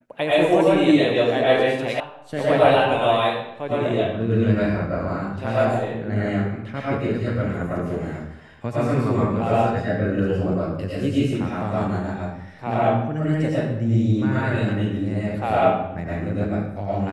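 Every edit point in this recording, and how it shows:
2 sound cut off

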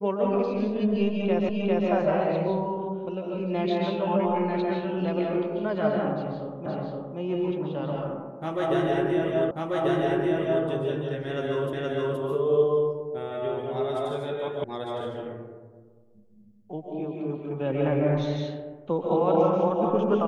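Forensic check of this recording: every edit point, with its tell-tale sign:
1.49 repeat of the last 0.4 s
6.66 repeat of the last 0.52 s
9.51 repeat of the last 1.14 s
11.73 repeat of the last 0.47 s
14.64 sound cut off

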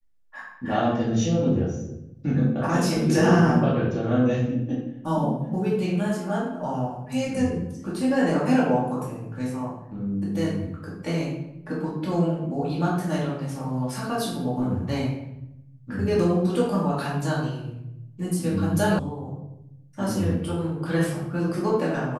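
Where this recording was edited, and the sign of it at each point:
18.99 sound cut off

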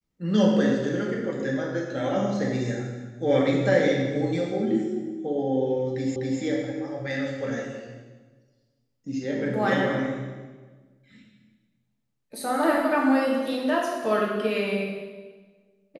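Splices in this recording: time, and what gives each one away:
6.16 repeat of the last 0.25 s

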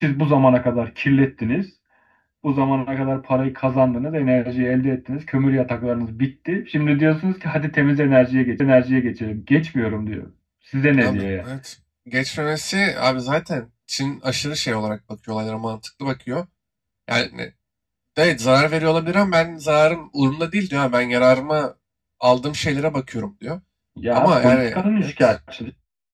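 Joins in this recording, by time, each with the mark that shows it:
8.6 repeat of the last 0.57 s

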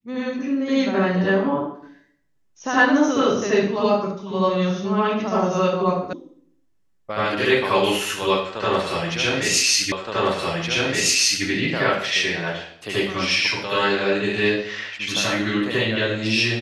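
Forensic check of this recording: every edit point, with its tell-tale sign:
6.13 sound cut off
9.92 repeat of the last 1.52 s

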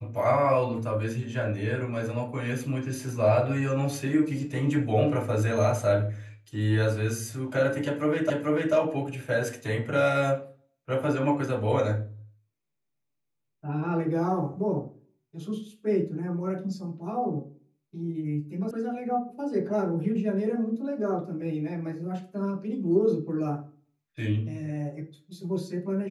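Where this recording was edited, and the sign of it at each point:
8.3 repeat of the last 0.44 s
18.71 sound cut off

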